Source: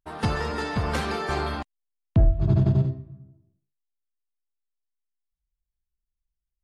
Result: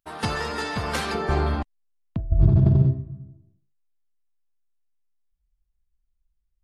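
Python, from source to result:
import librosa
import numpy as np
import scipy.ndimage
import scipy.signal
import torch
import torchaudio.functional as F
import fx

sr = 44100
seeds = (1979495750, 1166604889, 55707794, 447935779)

y = fx.tilt_eq(x, sr, slope=fx.steps((0.0, 1.5), (1.13, -2.0)))
y = fx.over_compress(y, sr, threshold_db=-14.0, ratio=-0.5)
y = y * librosa.db_to_amplitude(-2.0)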